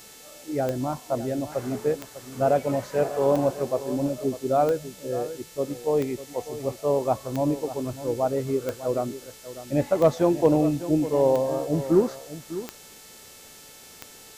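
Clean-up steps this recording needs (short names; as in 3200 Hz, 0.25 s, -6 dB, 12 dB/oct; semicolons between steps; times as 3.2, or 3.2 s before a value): de-click; de-hum 439.4 Hz, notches 34; denoiser 22 dB, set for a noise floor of -47 dBFS; inverse comb 0.6 s -13.5 dB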